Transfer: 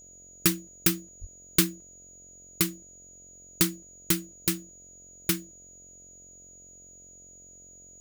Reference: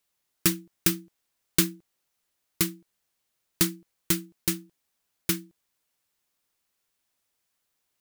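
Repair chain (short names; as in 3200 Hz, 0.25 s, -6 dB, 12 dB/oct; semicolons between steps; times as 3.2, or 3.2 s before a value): de-hum 45 Hz, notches 15; notch 6800 Hz, Q 30; de-plosive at 1.2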